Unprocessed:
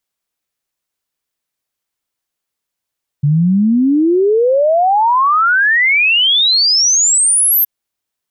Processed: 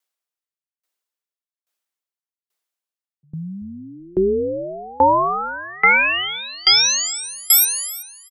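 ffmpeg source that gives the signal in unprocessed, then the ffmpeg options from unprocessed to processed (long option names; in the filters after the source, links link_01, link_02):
-f lavfi -i "aevalsrc='0.376*clip(min(t,4.42-t)/0.01,0,1)*sin(2*PI*140*4.42/log(13000/140)*(exp(log(13000/140)*t/4.42)-1))':duration=4.42:sample_rate=44100"
-filter_complex "[0:a]highpass=380,asplit=2[link_01][link_02];[link_02]asplit=7[link_03][link_04][link_05][link_06][link_07][link_08][link_09];[link_03]adelay=378,afreqshift=-64,volume=-5dB[link_10];[link_04]adelay=756,afreqshift=-128,volume=-10dB[link_11];[link_05]adelay=1134,afreqshift=-192,volume=-15.1dB[link_12];[link_06]adelay=1512,afreqshift=-256,volume=-20.1dB[link_13];[link_07]adelay=1890,afreqshift=-320,volume=-25.1dB[link_14];[link_08]adelay=2268,afreqshift=-384,volume=-30.2dB[link_15];[link_09]adelay=2646,afreqshift=-448,volume=-35.2dB[link_16];[link_10][link_11][link_12][link_13][link_14][link_15][link_16]amix=inputs=7:normalize=0[link_17];[link_01][link_17]amix=inputs=2:normalize=0,aeval=exprs='val(0)*pow(10,-28*if(lt(mod(1.2*n/s,1),2*abs(1.2)/1000),1-mod(1.2*n/s,1)/(2*abs(1.2)/1000),(mod(1.2*n/s,1)-2*abs(1.2)/1000)/(1-2*abs(1.2)/1000))/20)':channel_layout=same"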